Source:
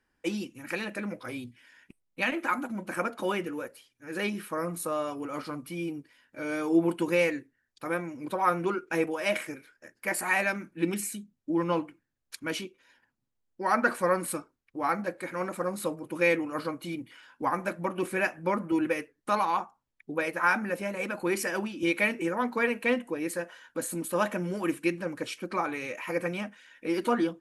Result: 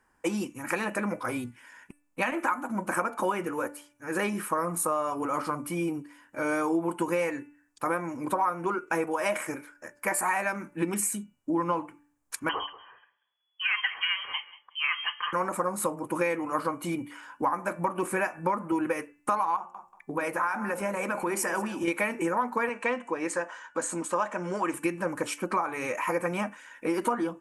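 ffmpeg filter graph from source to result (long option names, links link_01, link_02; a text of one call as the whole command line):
ffmpeg -i in.wav -filter_complex "[0:a]asettb=1/sr,asplit=3[link_01][link_02][link_03];[link_01]atrim=end=12.494[link_04];[link_02]atrim=start=12.49:end=15.33,asetpts=PTS-STARTPTS,afade=type=in:duration=0.004:curve=qsin,afade=type=out:start_time=2.836:duration=0.004:curve=qsin,aecho=1:1:185|370:0.106|0.0244,atrim=end_sample=125244,lowpass=frequency=2900:width_type=q:width=0.5098,lowpass=frequency=2900:width_type=q:width=0.6013,lowpass=frequency=2900:width_type=q:width=0.9,lowpass=frequency=2900:width_type=q:width=2.563,afreqshift=-3400[link_05];[link_03]atrim=start=15.326[link_06];[link_04][link_05]acrossfade=duration=0.004:curve1=hsin:curve2=qsin[link_07];[link_07][link_06]acrossfade=duration=0.004:curve1=qsin:curve2=hsin,asettb=1/sr,asplit=3[link_08][link_09][link_10];[link_08]atrim=end=19.564[link_11];[link_09]atrim=start=19.56:end=21.88,asetpts=PTS-STARTPTS,afade=type=in:duration=0.004:curve=qsin,afade=type=out:start_time=2.316:duration=0.004:curve=qsin,acompressor=threshold=-34dB:ratio=2:attack=3.2:release=140:knee=1:detection=peak,bandreject=frequency=60:width_type=h:width=6,bandreject=frequency=120:width_type=h:width=6,bandreject=frequency=180:width_type=h:width=6,bandreject=frequency=240:width_type=h:width=6,bandreject=frequency=300:width_type=h:width=6,bandreject=frequency=360:width_type=h:width=6,bandreject=frequency=420:width_type=h:width=6,bandreject=frequency=480:width_type=h:width=6,bandreject=frequency=540:width_type=h:width=6,aecho=1:1:184|368:0.141|0.024,atrim=end_sample=102312[link_12];[link_10]atrim=start=21.876[link_13];[link_11][link_12]acrossfade=duration=0.004:curve1=hsin:curve2=qsin[link_14];[link_14][link_13]acrossfade=duration=0.004:curve1=qsin:curve2=hsin,asettb=1/sr,asplit=3[link_15][link_16][link_17];[link_15]atrim=end=22.694[link_18];[link_16]atrim=start=22.69:end=24.74,asetpts=PTS-STARTPTS,afade=type=in:duration=0.004:curve=qsin,afade=type=out:start_time=2.046:duration=0.004:curve=qsin,lowpass=frequency=7400:width=0.5412,lowpass=frequency=7400:width=1.3066,lowshelf=frequency=280:gain=-10[link_19];[link_17]atrim=start=24.736[link_20];[link_18][link_19]acrossfade=duration=0.004:curve1=hsin:curve2=qsin[link_21];[link_21][link_20]acrossfade=duration=0.004:curve1=qsin:curve2=hsin,equalizer=frequency=1000:width_type=o:width=1:gain=10,equalizer=frequency=4000:width_type=o:width=1:gain=-9,equalizer=frequency=8000:width_type=o:width=1:gain=8,acompressor=threshold=-29dB:ratio=6,bandreject=frequency=291.7:width_type=h:width=4,bandreject=frequency=583.4:width_type=h:width=4,bandreject=frequency=875.1:width_type=h:width=4,bandreject=frequency=1166.8:width_type=h:width=4,bandreject=frequency=1458.5:width_type=h:width=4,bandreject=frequency=1750.2:width_type=h:width=4,bandreject=frequency=2041.9:width_type=h:width=4,bandreject=frequency=2333.6:width_type=h:width=4,bandreject=frequency=2625.3:width_type=h:width=4,bandreject=frequency=2917:width_type=h:width=4,volume=4.5dB" out.wav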